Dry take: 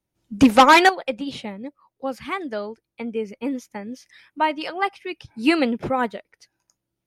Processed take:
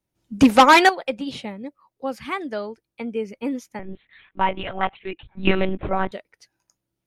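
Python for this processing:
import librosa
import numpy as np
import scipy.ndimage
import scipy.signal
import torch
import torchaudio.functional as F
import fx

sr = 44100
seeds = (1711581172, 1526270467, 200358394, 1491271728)

y = fx.lpc_monotone(x, sr, seeds[0], pitch_hz=190.0, order=10, at=(3.79, 6.12))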